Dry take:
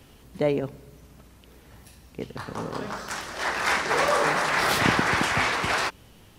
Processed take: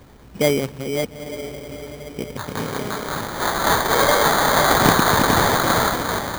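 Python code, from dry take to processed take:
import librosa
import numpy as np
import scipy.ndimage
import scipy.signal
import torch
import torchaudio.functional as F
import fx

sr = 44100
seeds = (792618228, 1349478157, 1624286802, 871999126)

y = fx.reverse_delay(x, sr, ms=364, wet_db=-5.5)
y = fx.echo_diffused(y, sr, ms=925, feedback_pct=51, wet_db=-10.5)
y = fx.sample_hold(y, sr, seeds[0], rate_hz=2700.0, jitter_pct=0)
y = y * librosa.db_to_amplitude(5.5)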